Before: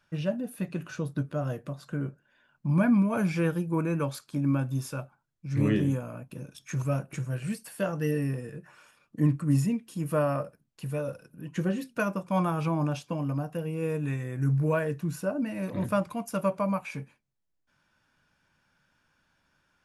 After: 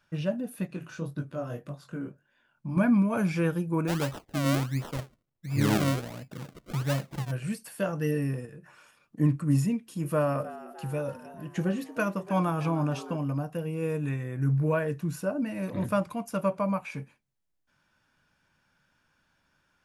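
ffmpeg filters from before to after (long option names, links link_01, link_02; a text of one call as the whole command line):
ffmpeg -i in.wav -filter_complex "[0:a]asettb=1/sr,asplit=3[link_01][link_02][link_03];[link_01]atrim=end=0.674[link_04];[link_02]atrim=start=0.67:end=2.77,asetpts=PTS-STARTPTS,afade=type=in:duration=0.004:curve=qsin,afade=type=out:start_time=2.096:duration=0.004:curve=qsin,flanger=delay=19.5:depth=6.2:speed=1.8[link_05];[link_03]atrim=start=2.766[link_06];[link_04][link_05]acrossfade=duration=0.004:curve1=hsin:curve2=qsin[link_07];[link_07][link_06]acrossfade=duration=0.004:curve1=qsin:curve2=hsin,asplit=3[link_08][link_09][link_10];[link_08]afade=type=out:start_time=3.87:duration=0.02[link_11];[link_09]acrusher=samples=36:mix=1:aa=0.000001:lfo=1:lforange=36:lforate=1.4,afade=type=in:start_time=3.87:duration=0.02,afade=type=out:start_time=7.3:duration=0.02[link_12];[link_10]afade=type=in:start_time=7.3:duration=0.02[link_13];[link_11][link_12][link_13]amix=inputs=3:normalize=0,asettb=1/sr,asplit=3[link_14][link_15][link_16];[link_14]atrim=end=8.454[link_17];[link_15]atrim=start=8.45:end=9.2,asetpts=PTS-STARTPTS,afade=type=in:duration=0.004:curve=qsin,afade=type=out:start_time=0.746:duration=0.004:curve=qsin,acompressor=threshold=-43dB:ratio=3:attack=3.2:release=140:knee=1:detection=peak[link_18];[link_16]atrim=start=9.196[link_19];[link_17][link_18]acrossfade=duration=0.004:curve1=hsin:curve2=qsin[link_20];[link_20][link_19]acrossfade=duration=0.004:curve1=qsin:curve2=hsin,asettb=1/sr,asplit=3[link_21][link_22][link_23];[link_21]atrim=end=9.734[link_24];[link_22]atrim=start=9.73:end=13.17,asetpts=PTS-STARTPTS,afade=type=in:duration=0.004:curve=qsin,afade=type=out:start_time=3.436:duration=0.004:curve=qsin,asplit=6[link_25][link_26][link_27][link_28][link_29][link_30];[link_26]adelay=307,afreqshift=110,volume=-16dB[link_31];[link_27]adelay=614,afreqshift=220,volume=-21dB[link_32];[link_28]adelay=921,afreqshift=330,volume=-26.1dB[link_33];[link_29]adelay=1228,afreqshift=440,volume=-31.1dB[link_34];[link_30]adelay=1535,afreqshift=550,volume=-36.1dB[link_35];[link_25][link_31][link_32][link_33][link_34][link_35]amix=inputs=6:normalize=0,atrim=end_sample=151704[link_36];[link_23]atrim=start=13.166[link_37];[link_24][link_36]acrossfade=duration=0.004:curve1=hsin:curve2=qsin[link_38];[link_38][link_37]acrossfade=duration=0.004:curve1=qsin:curve2=hsin,asettb=1/sr,asplit=3[link_39][link_40][link_41];[link_39]atrim=end=14.094[link_42];[link_40]atrim=start=14.09:end=14.88,asetpts=PTS-STARTPTS,afade=type=in:duration=0.004:curve=qsin,afade=type=out:start_time=0.786:duration=0.004:curve=qsin,equalizer=frequency=7400:width=0.91:gain=-6[link_43];[link_41]atrim=start=14.876[link_44];[link_42][link_43]acrossfade=duration=0.004:curve1=hsin:curve2=qsin[link_45];[link_45][link_44]acrossfade=duration=0.004:curve1=qsin:curve2=hsin,asettb=1/sr,asplit=3[link_46][link_47][link_48];[link_46]atrim=end=16.154[link_49];[link_47]atrim=start=16.15:end=16.97,asetpts=PTS-STARTPTS,afade=type=in:duration=0.004:curve=qsin,afade=type=out:start_time=0.816:duration=0.004:curve=qsin,highshelf=frequency=5200:gain=-4[link_50];[link_48]atrim=start=16.966[link_51];[link_49][link_50]acrossfade=duration=0.004:curve1=hsin:curve2=qsin[link_52];[link_52][link_51]acrossfade=duration=0.004:curve1=qsin:curve2=hsin" out.wav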